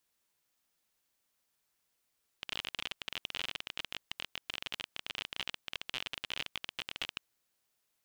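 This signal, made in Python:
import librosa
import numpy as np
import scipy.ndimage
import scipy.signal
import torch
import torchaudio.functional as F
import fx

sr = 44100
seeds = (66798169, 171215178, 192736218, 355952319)

y = fx.geiger_clicks(sr, seeds[0], length_s=4.78, per_s=33.0, level_db=-20.0)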